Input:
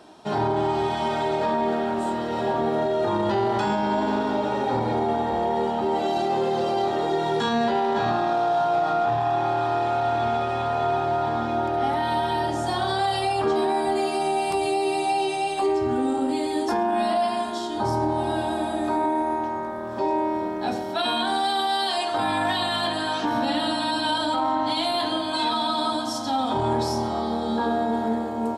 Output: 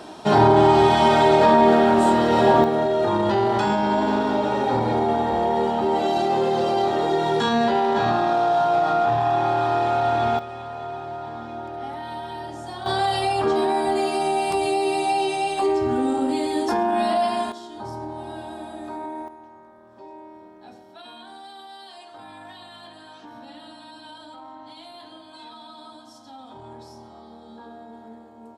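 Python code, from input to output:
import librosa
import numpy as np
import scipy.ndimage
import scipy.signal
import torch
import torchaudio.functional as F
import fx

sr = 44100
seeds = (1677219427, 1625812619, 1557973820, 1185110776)

y = fx.gain(x, sr, db=fx.steps((0.0, 9.0), (2.64, 2.5), (10.39, -9.0), (12.86, 1.5), (17.52, -9.5), (19.28, -18.5)))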